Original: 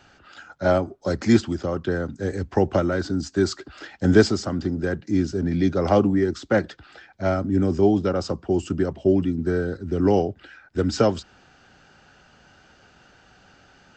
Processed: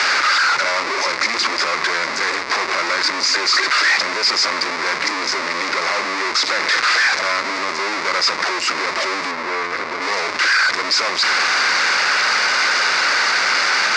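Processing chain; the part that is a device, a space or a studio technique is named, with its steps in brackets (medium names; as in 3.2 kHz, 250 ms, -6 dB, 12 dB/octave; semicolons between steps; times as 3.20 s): home computer beeper (one-bit comparator; cabinet simulation 730–5800 Hz, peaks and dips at 750 Hz -8 dB, 1.1 kHz +5 dB, 2.1 kHz +8 dB, 3.1 kHz -9 dB, 4.8 kHz +6 dB); 9.31–10.02 s: treble shelf 3.4 kHz -10 dB; trim +7.5 dB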